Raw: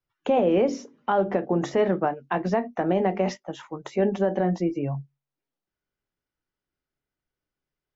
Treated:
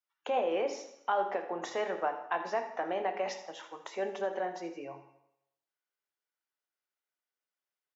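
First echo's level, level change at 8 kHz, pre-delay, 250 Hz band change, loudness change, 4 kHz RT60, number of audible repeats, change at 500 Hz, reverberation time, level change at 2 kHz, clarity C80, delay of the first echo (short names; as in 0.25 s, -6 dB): -13.5 dB, n/a, 10 ms, -18.0 dB, -9.5 dB, 0.80 s, 1, -9.5 dB, 0.80 s, -4.0 dB, 10.0 dB, 80 ms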